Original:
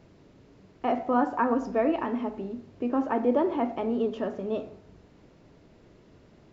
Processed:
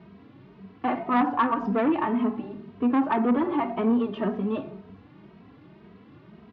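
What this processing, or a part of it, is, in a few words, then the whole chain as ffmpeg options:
barber-pole flanger into a guitar amplifier: -filter_complex "[0:a]asplit=2[link_01][link_02];[link_02]adelay=2.8,afreqshift=1.9[link_03];[link_01][link_03]amix=inputs=2:normalize=1,asoftclip=type=tanh:threshold=-25dB,highpass=91,equalizer=frequency=200:width_type=q:width=4:gain=7,equalizer=frequency=540:width_type=q:width=4:gain=-9,equalizer=frequency=1100:width_type=q:width=4:gain=5,lowpass=frequency=3600:width=0.5412,lowpass=frequency=3600:width=1.3066,volume=8dB"

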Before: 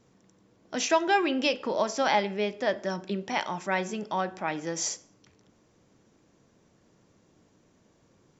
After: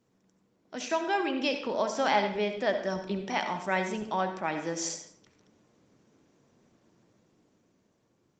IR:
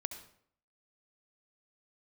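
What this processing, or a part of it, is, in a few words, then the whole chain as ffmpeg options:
far-field microphone of a smart speaker: -filter_complex "[1:a]atrim=start_sample=2205[link_01];[0:a][link_01]afir=irnorm=-1:irlink=0,highpass=110,dynaudnorm=framelen=270:gausssize=11:maxgain=6.5dB,volume=-5.5dB" -ar 48000 -c:a libopus -b:a 24k

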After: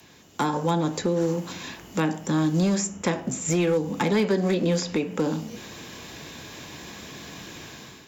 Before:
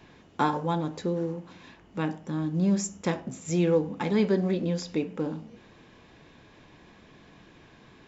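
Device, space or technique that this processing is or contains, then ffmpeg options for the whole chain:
FM broadcast chain: -filter_complex "[0:a]highpass=55,dynaudnorm=framelen=200:gausssize=5:maxgain=12dB,acrossover=split=180|470|2800[link_01][link_02][link_03][link_04];[link_01]acompressor=threshold=-31dB:ratio=4[link_05];[link_02]acompressor=threshold=-22dB:ratio=4[link_06];[link_03]acompressor=threshold=-23dB:ratio=4[link_07];[link_04]acompressor=threshold=-49dB:ratio=4[link_08];[link_05][link_06][link_07][link_08]amix=inputs=4:normalize=0,aemphasis=mode=production:type=50fm,alimiter=limit=-13dB:level=0:latency=1:release=436,asoftclip=type=hard:threshold=-15.5dB,lowpass=frequency=15000:width=0.5412,lowpass=frequency=15000:width=1.3066,aemphasis=mode=production:type=50fm"

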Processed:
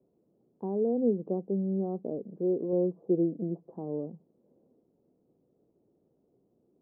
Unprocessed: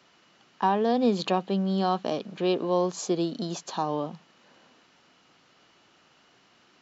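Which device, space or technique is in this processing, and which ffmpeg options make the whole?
under water: -filter_complex "[0:a]asettb=1/sr,asplit=3[link_01][link_02][link_03];[link_01]atrim=end=2.724[link_04];[link_02]atrim=start=2.72:end=3.75,asetpts=PTS-STARTPTS,afade=type=in:duration=0.004:curve=qsin,afade=type=out:start_time=1.026:duration=0.004:curve=qsin,aecho=1:1:6:0.53,atrim=end_sample=45423[link_05];[link_03]atrim=start=3.746[link_06];[link_04][link_05]acrossfade=duration=0.004:curve1=hsin:curve2=qsin[link_07];[link_07][link_06]acrossfade=duration=0.004:curve1=qsin:curve2=hsin,lowpass=frequency=500:width=0.5412,lowpass=frequency=500:width=1.3066,equalizer=frequency=440:width_type=o:width=0.56:gain=4.5,volume=-4dB"

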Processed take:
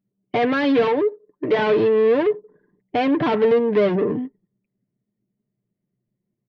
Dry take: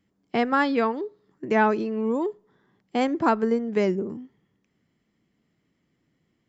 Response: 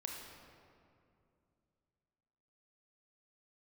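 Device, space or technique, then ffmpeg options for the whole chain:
overdrive pedal into a guitar cabinet: -filter_complex "[0:a]asettb=1/sr,asplit=3[link_01][link_02][link_03];[link_01]atrim=end=0.874[link_04];[link_02]atrim=start=0.87:end=1.59,asetpts=PTS-STARTPTS,afade=type=in:duration=0.004:curve=qsin,afade=type=out:start_time=0.716:duration=0.004:curve=qsin,highpass=290[link_05];[link_03]atrim=start=1.586[link_06];[link_04][link_05]acrossfade=duration=0.004:curve1=hsin:curve2=qsin[link_07];[link_07][link_06]acrossfade=duration=0.004:curve1=qsin:curve2=hsin,asplit=2[link_08][link_09];[link_09]highpass=frequency=720:poles=1,volume=32dB,asoftclip=type=tanh:threshold=-9dB[link_10];[link_08][link_10]amix=inputs=2:normalize=0,lowpass=frequency=1100:poles=1,volume=-6dB,highpass=100,equalizer=frequency=120:width_type=q:width=4:gain=5,equalizer=frequency=310:width_type=q:width=4:gain=-5,equalizer=frequency=840:width_type=q:width=4:gain=-8,equalizer=frequency=1300:width_type=q:width=4:gain=-9,lowpass=frequency=4200:width=0.5412,lowpass=frequency=4200:width=1.3066,anlmdn=0.631,aecho=1:1:6.7:0.5"

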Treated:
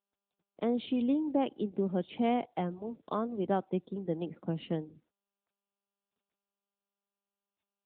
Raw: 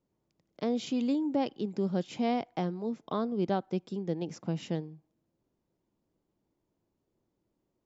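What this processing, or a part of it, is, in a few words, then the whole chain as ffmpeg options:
mobile call with aggressive noise cancelling: -filter_complex "[0:a]asplit=3[link_01][link_02][link_03];[link_01]afade=type=out:start_time=2.41:duration=0.02[link_04];[link_02]equalizer=frequency=330:width_type=o:width=1.1:gain=-3.5,afade=type=in:start_time=2.41:duration=0.02,afade=type=out:start_time=3.37:duration=0.02[link_05];[link_03]afade=type=in:start_time=3.37:duration=0.02[link_06];[link_04][link_05][link_06]amix=inputs=3:normalize=0,highpass=160,afftdn=noise_reduction=27:noise_floor=-53,volume=1dB" -ar 8000 -c:a libopencore_amrnb -b:a 10200

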